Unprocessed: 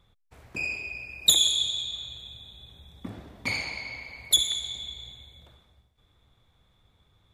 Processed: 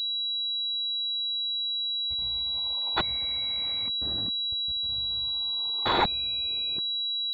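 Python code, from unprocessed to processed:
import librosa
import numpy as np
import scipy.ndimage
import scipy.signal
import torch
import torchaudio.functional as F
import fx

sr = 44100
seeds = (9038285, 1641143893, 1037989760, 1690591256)

y = x[::-1].copy()
y = fx.level_steps(y, sr, step_db=24)
y = fx.spec_freeze(y, sr, seeds[0], at_s=0.67, hold_s=0.73)
y = fx.pwm(y, sr, carrier_hz=3900.0)
y = y * librosa.db_to_amplitude(8.5)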